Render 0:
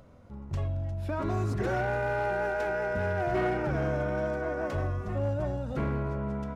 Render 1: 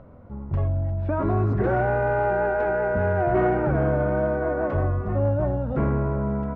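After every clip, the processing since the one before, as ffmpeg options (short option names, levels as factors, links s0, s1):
-af "lowpass=1400,volume=2.37"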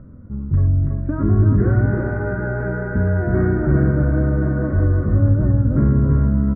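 -af "firequalizer=gain_entry='entry(270,0);entry(380,-8);entry(770,-22);entry(1300,-9);entry(1800,-9);entry(2700,-30);entry(3900,-27)':delay=0.05:min_phase=1,aecho=1:1:330|785:0.631|0.237,volume=2.51"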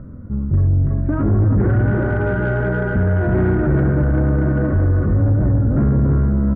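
-filter_complex "[0:a]asplit=2[s0][s1];[s1]alimiter=limit=0.158:level=0:latency=1:release=26,volume=0.944[s2];[s0][s2]amix=inputs=2:normalize=0,asoftclip=type=tanh:threshold=0.316"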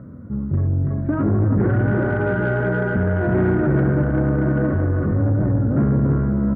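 -af "highpass=110"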